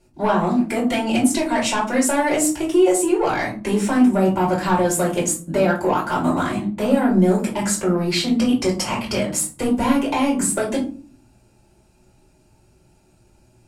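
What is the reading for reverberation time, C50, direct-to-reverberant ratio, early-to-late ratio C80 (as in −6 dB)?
non-exponential decay, 9.0 dB, −5.0 dB, 14.5 dB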